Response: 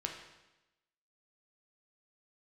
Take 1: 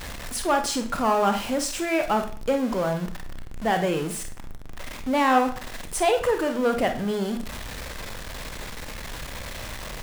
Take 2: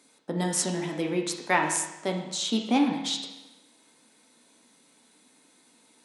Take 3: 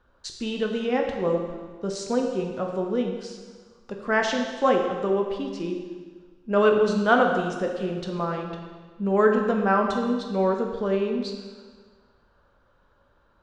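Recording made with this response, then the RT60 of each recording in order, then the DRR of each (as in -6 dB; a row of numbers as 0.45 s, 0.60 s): 2; 0.45 s, 1.0 s, 1.5 s; 6.0 dB, 1.0 dB, 2.0 dB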